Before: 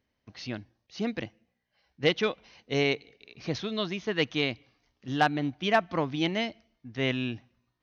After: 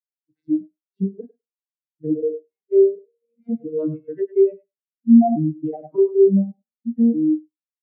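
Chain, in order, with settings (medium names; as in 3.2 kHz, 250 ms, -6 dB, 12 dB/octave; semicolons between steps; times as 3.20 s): vocoder on a broken chord major triad, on D#3, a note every 594 ms; low-pass that closes with the level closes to 610 Hz, closed at -24.5 dBFS; 3.87–4.34 s: peaking EQ 360 Hz -13 dB -> -5 dB 0.62 oct; in parallel at +2 dB: compression, threshold -35 dBFS, peak gain reduction 14.5 dB; on the sum: flange 0.58 Hz, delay 5.6 ms, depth 1.9 ms, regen -5%; thinning echo 101 ms, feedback 28%, high-pass 430 Hz, level -6.5 dB; on a send at -9 dB: reverberation RT60 0.20 s, pre-delay 3 ms; on the sum: loudness maximiser +23 dB; spectral contrast expander 2.5:1; trim -3 dB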